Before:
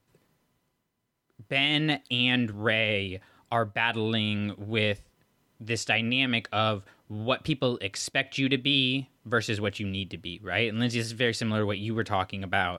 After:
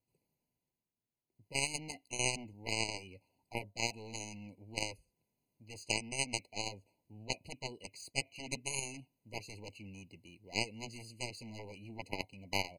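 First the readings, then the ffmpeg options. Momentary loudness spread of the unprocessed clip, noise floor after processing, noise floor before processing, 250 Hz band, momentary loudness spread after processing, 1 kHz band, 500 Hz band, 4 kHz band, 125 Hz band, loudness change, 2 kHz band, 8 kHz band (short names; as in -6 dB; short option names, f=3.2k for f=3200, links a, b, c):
9 LU, under -85 dBFS, -75 dBFS, -18.0 dB, 16 LU, -13.5 dB, -15.5 dB, -13.0 dB, -16.0 dB, -12.0 dB, -13.5 dB, +2.0 dB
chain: -af "aeval=exprs='0.335*(cos(1*acos(clip(val(0)/0.335,-1,1)))-cos(1*PI/2))+0.133*(cos(3*acos(clip(val(0)/0.335,-1,1)))-cos(3*PI/2))':c=same,crystalizer=i=1:c=0,afftfilt=real='re*eq(mod(floor(b*sr/1024/1000),2),0)':imag='im*eq(mod(floor(b*sr/1024/1000),2),0)':win_size=1024:overlap=0.75,volume=-2dB"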